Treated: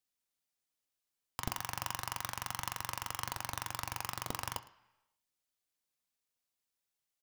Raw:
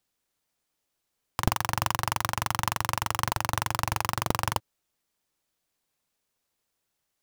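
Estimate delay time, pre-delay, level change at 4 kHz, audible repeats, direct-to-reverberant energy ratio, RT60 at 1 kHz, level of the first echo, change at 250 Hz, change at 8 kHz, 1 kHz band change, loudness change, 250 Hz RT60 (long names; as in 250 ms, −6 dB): 109 ms, 3 ms, −8.5 dB, 1, 9.5 dB, 0.95 s, −23.0 dB, −13.5 dB, −7.5 dB, −12.0 dB, −10.5 dB, 0.85 s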